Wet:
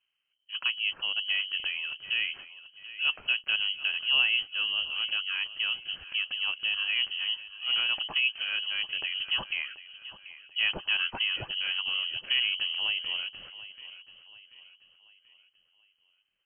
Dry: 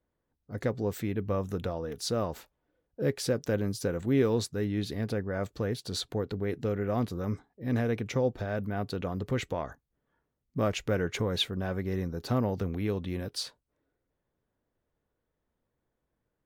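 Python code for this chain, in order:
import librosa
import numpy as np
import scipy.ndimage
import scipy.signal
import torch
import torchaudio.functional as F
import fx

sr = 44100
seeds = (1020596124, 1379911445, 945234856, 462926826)

p1 = x + fx.echo_feedback(x, sr, ms=735, feedback_pct=43, wet_db=-15.5, dry=0)
y = fx.freq_invert(p1, sr, carrier_hz=3100)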